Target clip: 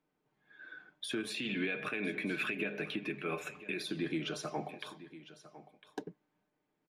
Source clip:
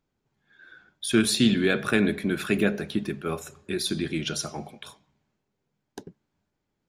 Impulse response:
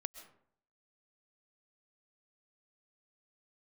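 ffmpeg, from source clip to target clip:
-filter_complex "[0:a]aecho=1:1:6.6:0.41,acompressor=threshold=-26dB:ratio=6,asettb=1/sr,asplit=3[link_01][link_02][link_03];[link_01]atrim=end=1.304[link_04];[link_02]atrim=start=1.3:end=3.83,asetpts=PTS-STARTPTS,afade=type=in:duration=0.004:curve=qsin,afade=type=out:start_time=2.526:duration=0.004:curve=qsin,equalizer=frequency=2500:width=2.7:gain=12.5[link_05];[link_03]atrim=start=3.826[link_06];[link_04][link_05]acrossfade=duration=0.004:curve1=hsin:curve2=qsin[link_07];[link_07][link_06]acrossfade=duration=0.004:curve1=qsin:curve2=hsin,alimiter=limit=-23dB:level=0:latency=1:release=216,acrossover=split=190 3200:gain=0.178 1 0.251[link_08][link_09][link_10];[link_08][link_09][link_10]amix=inputs=3:normalize=0,bandreject=frequency=1400:width=21,aecho=1:1:1004:0.158"

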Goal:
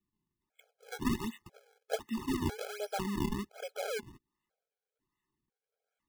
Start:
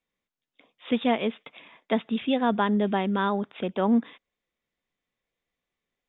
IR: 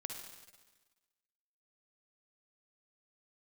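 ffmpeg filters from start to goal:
-af "crystalizer=i=4.5:c=0,acrusher=samples=40:mix=1:aa=0.000001:lfo=1:lforange=64:lforate=1.3,afftfilt=real='re*gt(sin(2*PI*1*pts/sr)*(1-2*mod(floor(b*sr/1024/430),2)),0)':imag='im*gt(sin(2*PI*1*pts/sr)*(1-2*mod(floor(b*sr/1024/430),2)),0)':win_size=1024:overlap=0.75,volume=-8.5dB"

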